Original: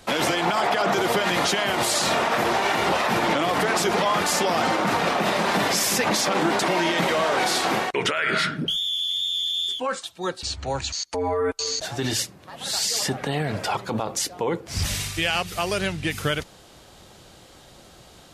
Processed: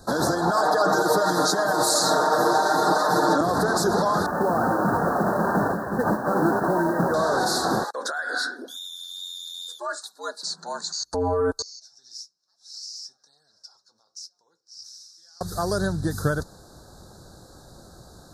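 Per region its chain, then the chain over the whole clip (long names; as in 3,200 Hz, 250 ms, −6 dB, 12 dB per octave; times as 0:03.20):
0:00.51–0:03.41: high-pass filter 250 Hz + comb filter 6.5 ms, depth 91%
0:04.26–0:07.14: linear-phase brick-wall low-pass 1,900 Hz + noise that follows the level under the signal 24 dB
0:07.84–0:11.00: high-pass filter 290 Hz 6 dB per octave + low-shelf EQ 490 Hz −10 dB + frequency shifter +97 Hz
0:11.62–0:15.41: flanger 1.1 Hz, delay 4.4 ms, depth 5.4 ms, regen −62% + resonant band-pass 5,400 Hz, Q 9.1
whole clip: elliptic band-stop filter 1,600–4,000 Hz, stop band 40 dB; low-shelf EQ 240 Hz +5.5 dB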